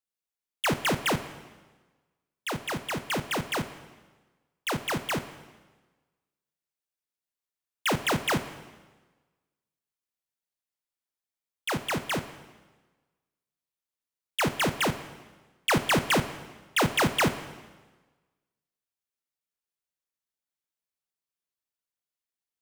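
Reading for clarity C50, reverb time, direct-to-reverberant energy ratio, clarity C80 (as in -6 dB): 12.5 dB, 1.3 s, 10.5 dB, 14.0 dB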